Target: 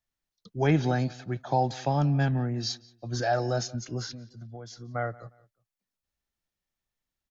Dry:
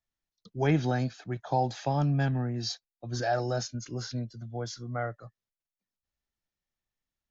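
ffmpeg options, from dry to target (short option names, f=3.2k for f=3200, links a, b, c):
-filter_complex "[0:a]asplit=3[a][b][c];[a]afade=t=out:st=4.11:d=0.02[d];[b]acompressor=threshold=-42dB:ratio=6,afade=t=in:st=4.11:d=0.02,afade=t=out:st=4.94:d=0.02[e];[c]afade=t=in:st=4.94:d=0.02[f];[d][e][f]amix=inputs=3:normalize=0,asplit=2[g][h];[h]adelay=178,lowpass=f=3.8k:p=1,volume=-21dB,asplit=2[i][j];[j]adelay=178,lowpass=f=3.8k:p=1,volume=0.3[k];[g][i][k]amix=inputs=3:normalize=0,volume=2dB"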